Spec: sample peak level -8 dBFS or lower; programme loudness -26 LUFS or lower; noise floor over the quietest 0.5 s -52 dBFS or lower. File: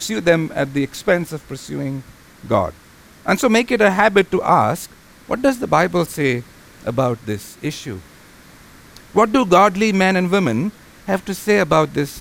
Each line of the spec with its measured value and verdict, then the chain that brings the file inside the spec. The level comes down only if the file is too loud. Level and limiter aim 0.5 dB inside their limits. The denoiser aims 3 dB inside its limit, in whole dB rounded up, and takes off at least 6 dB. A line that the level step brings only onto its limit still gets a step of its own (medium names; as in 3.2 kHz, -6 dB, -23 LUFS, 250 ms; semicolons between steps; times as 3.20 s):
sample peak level -1.5 dBFS: fail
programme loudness -18.0 LUFS: fail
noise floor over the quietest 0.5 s -46 dBFS: fail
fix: trim -8.5 dB